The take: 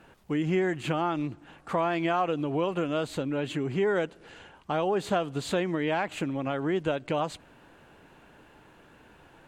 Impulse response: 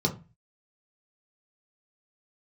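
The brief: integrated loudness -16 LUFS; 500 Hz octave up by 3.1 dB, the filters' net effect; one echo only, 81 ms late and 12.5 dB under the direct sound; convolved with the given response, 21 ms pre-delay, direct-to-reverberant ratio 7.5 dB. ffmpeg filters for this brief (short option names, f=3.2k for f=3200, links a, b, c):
-filter_complex "[0:a]equalizer=f=500:t=o:g=4,aecho=1:1:81:0.237,asplit=2[a][b];[1:a]atrim=start_sample=2205,adelay=21[c];[b][c]afir=irnorm=-1:irlink=0,volume=-16.5dB[d];[a][d]amix=inputs=2:normalize=0,volume=8dB"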